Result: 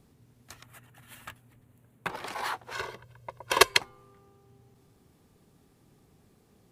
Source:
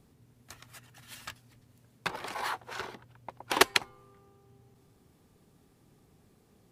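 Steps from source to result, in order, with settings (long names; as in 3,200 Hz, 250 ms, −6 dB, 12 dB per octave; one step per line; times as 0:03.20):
0:00.63–0:02.10: parametric band 5,100 Hz −15 dB 0.91 octaves
0:02.73–0:03.80: comb filter 1.9 ms, depth 80%
level +1 dB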